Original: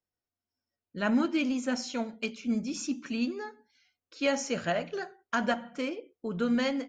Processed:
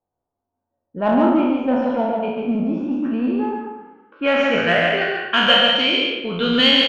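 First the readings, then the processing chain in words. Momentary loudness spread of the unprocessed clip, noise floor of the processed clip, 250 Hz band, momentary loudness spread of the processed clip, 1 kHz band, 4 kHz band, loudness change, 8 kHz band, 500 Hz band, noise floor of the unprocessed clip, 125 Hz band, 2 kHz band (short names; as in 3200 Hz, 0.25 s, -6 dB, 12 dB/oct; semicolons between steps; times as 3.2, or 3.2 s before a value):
11 LU, -82 dBFS, +10.0 dB, 10 LU, +14.0 dB, +23.5 dB, +13.5 dB, n/a, +13.0 dB, under -85 dBFS, +11.0 dB, +15.5 dB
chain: spectral trails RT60 1.09 s; low-pass sweep 840 Hz -> 3700 Hz, 3.4–5.79; in parallel at -8 dB: soft clip -27 dBFS, distortion -9 dB; on the sum: bell 3000 Hz +11.5 dB 0.49 oct; echo 0.142 s -3.5 dB; low-pass opened by the level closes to 1400 Hz, open at -16.5 dBFS; gain +4 dB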